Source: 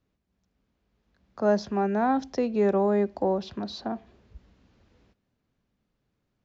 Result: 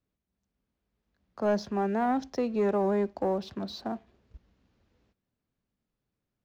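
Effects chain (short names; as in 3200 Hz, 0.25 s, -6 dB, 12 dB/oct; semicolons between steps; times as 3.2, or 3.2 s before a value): sample leveller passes 1; record warp 78 rpm, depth 100 cents; gain -6 dB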